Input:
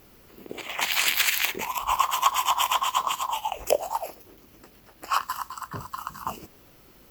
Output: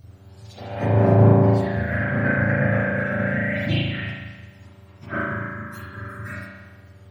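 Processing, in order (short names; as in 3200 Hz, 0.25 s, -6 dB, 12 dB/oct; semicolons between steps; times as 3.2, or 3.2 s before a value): spectrum mirrored in octaves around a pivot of 1300 Hz; spring tank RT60 1.3 s, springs 36 ms, chirp 40 ms, DRR -7 dB; 3.19–3.82 fast leveller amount 50%; gain -5 dB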